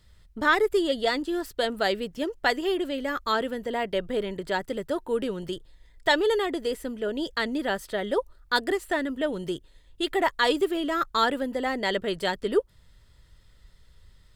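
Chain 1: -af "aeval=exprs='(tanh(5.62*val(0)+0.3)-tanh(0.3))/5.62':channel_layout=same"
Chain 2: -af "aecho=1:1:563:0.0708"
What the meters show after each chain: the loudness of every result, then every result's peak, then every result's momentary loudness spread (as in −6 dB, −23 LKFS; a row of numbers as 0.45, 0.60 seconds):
−28.5, −27.0 LKFS; −13.0, −9.0 dBFS; 7, 8 LU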